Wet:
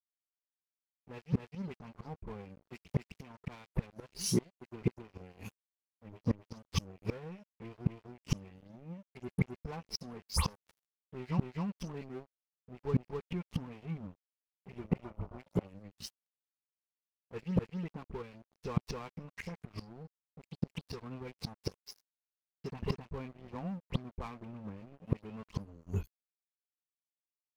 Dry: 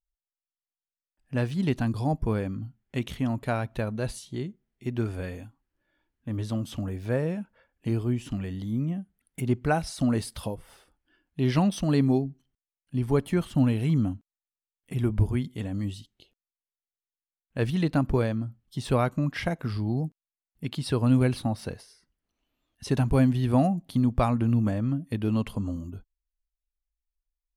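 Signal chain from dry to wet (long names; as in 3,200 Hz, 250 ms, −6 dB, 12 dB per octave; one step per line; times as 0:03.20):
every frequency bin delayed by itself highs late, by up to 118 ms
treble cut that deepens with the level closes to 2,700 Hz, closed at −20.5 dBFS
EQ curve with evenly spaced ripples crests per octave 0.82, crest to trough 13 dB
noise gate −47 dBFS, range −9 dB
echo ahead of the sound 261 ms −22 dB
gate with flip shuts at −25 dBFS, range −24 dB
dynamic equaliser 420 Hz, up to −3 dB, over −57 dBFS, Q 3.6
dead-zone distortion −54.5 dBFS
gain on a spectral selection 0:14.90–0:15.69, 530–1,500 Hz +7 dB
level +8.5 dB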